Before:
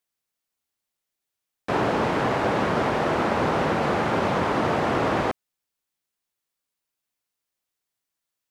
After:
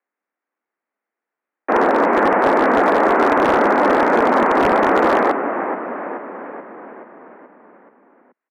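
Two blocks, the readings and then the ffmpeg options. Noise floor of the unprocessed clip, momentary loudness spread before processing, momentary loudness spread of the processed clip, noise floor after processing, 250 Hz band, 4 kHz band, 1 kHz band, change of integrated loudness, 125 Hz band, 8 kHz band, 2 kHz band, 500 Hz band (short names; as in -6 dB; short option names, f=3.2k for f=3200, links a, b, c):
-85 dBFS, 3 LU, 15 LU, under -85 dBFS, +7.5 dB, +0.5 dB, +9.5 dB, +8.0 dB, -6.5 dB, n/a, +9.0 dB, +9.0 dB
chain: -filter_complex "[0:a]asplit=8[a][b][c][d][e][f][g][h];[b]adelay=429,afreqshift=-44,volume=-8dB[i];[c]adelay=858,afreqshift=-88,volume=-12.7dB[j];[d]adelay=1287,afreqshift=-132,volume=-17.5dB[k];[e]adelay=1716,afreqshift=-176,volume=-22.2dB[l];[f]adelay=2145,afreqshift=-220,volume=-26.9dB[m];[g]adelay=2574,afreqshift=-264,volume=-31.7dB[n];[h]adelay=3003,afreqshift=-308,volume=-36.4dB[o];[a][i][j][k][l][m][n][o]amix=inputs=8:normalize=0,highpass=f=170:t=q:w=0.5412,highpass=f=170:t=q:w=1.307,lowpass=f=2k:t=q:w=0.5176,lowpass=f=2k:t=q:w=0.7071,lowpass=f=2k:t=q:w=1.932,afreqshift=59,aeval=exprs='0.168*(abs(mod(val(0)/0.168+3,4)-2)-1)':c=same,volume=8.5dB"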